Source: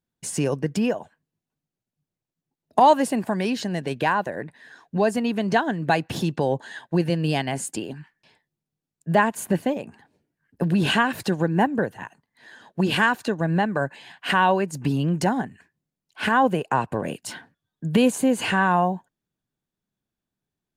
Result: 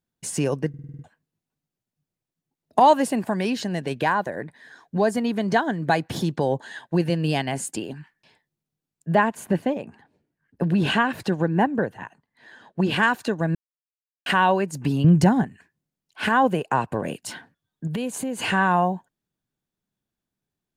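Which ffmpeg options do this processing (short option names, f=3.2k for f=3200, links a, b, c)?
-filter_complex "[0:a]asettb=1/sr,asplit=3[a][b][c];[a]atrim=end=4.044[d];[b]atrim=start=4.04:end=6.62,asetpts=PTS-STARTPTS,afade=t=in:d=0.004:c=qsin,afade=t=out:st=2.576:d=0.004:c=qsin,bandreject=f=2.7k:w=8.6[e];[c]atrim=start=6.616[f];[d][e]acrossfade=d=0.004:c1=hsin:c2=qsin[g];[g][f]acrossfade=d=0.004:c1=qsin:c2=hsin,asettb=1/sr,asplit=3[h][i][j];[h]atrim=end=9.094[k];[i]atrim=start=9.09:end=13.03,asetpts=PTS-STARTPTS,afade=t=in:d=0.004:c=qsin,afade=t=out:st=3.936:d=0.004:c=qsin,highshelf=f=5k:g=-9[l];[j]atrim=start=13.026[m];[k][l]acrossfade=d=0.004:c1=hsin:c2=qsin[n];[n][m]acrossfade=d=0.004:c1=qsin:c2=hsin,asettb=1/sr,asplit=3[o][p][q];[o]atrim=end=15.044[r];[p]atrim=start=15.04:end=15.44,asetpts=PTS-STARTPTS,afade=t=in:d=0.004:c=qsin,afade=t=out:st=0.396:d=0.004:c=qsin,equalizer=f=100:w=0.69:g=14.5[s];[q]atrim=start=15.436[t];[r][s]acrossfade=d=0.004:c1=hsin:c2=qsin[u];[u][t]acrossfade=d=0.004:c1=qsin:c2=hsin,asettb=1/sr,asplit=3[v][w][x];[v]atrim=end=17.874[y];[w]atrim=start=17.87:end=18.43,asetpts=PTS-STARTPTS,afade=t=in:d=0.004:c=qsin,afade=t=out:st=0.556:d=0.004:c=qsin,acompressor=threshold=-27dB:ratio=3:attack=3.2:release=140:knee=1:detection=peak[z];[x]atrim=start=18.426[aa];[y][z]acrossfade=d=0.004:c1=hsin:c2=qsin[ab];[ab][aa]acrossfade=d=0.004:c1=qsin:c2=hsin,asplit=10[ac][ad][ae][af][ag][ah][ai][aj][ak][al];[ac]atrim=end=0.742[am];[ad]atrim=start=0.688:end=0.742[an];[ae]atrim=start=0.688:end=0.742[ao];[af]atrim=start=0.688:end=0.742[ap];[ag]atrim=start=0.688:end=0.742[aq];[ah]atrim=start=0.688:end=0.742[ar];[ai]atrim=start=0.688:end=0.742[as];[aj]atrim=start=1.038:end=13.55,asetpts=PTS-STARTPTS,afade=t=out:st=12.508:d=0.004:c=hsin[at];[ak]atrim=start=13.55:end=14.26,asetpts=PTS-STARTPTS,volume=0[au];[al]atrim=start=14.26,asetpts=PTS-STARTPTS,afade=t=in:d=0.004:c=hsin[av];[am][an]acrossfade=d=0.004:c1=hsin:c2=hsin[aw];[aw][ao]acrossfade=d=0.004:c1=hsin:c2=hsin[ax];[ax][ap]acrossfade=d=0.004:c1=hsin:c2=hsin[ay];[ay][aq]acrossfade=d=0.004:c1=hsin:c2=hsin[az];[az][ar]acrossfade=d=0.004:c1=hsin:c2=hsin[ba];[ba][as]acrossfade=d=0.004:c1=hsin:c2=hsin[bb];[at][au][av]concat=n=3:v=0:a=1[bc];[bb][bc]acrossfade=d=0.004:c1=hsin:c2=hsin"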